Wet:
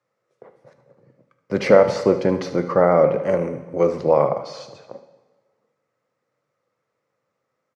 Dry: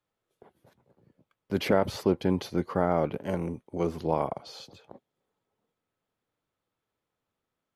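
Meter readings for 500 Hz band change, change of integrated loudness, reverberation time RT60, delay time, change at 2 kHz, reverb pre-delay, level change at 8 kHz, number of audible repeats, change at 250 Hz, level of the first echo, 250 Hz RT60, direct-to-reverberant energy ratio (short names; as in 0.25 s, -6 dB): +12.5 dB, +10.0 dB, 1.2 s, 74 ms, +9.0 dB, 5 ms, n/a, 1, +5.0 dB, -14.5 dB, 1.2 s, 8.0 dB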